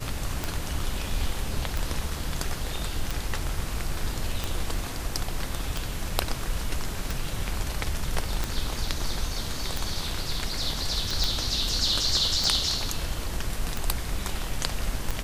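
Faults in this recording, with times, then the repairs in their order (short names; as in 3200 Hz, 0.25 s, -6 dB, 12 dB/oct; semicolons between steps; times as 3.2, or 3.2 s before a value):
tick 45 rpm
11.24 pop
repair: de-click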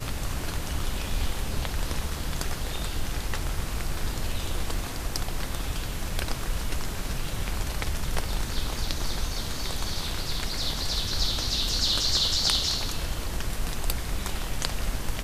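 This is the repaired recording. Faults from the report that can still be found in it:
none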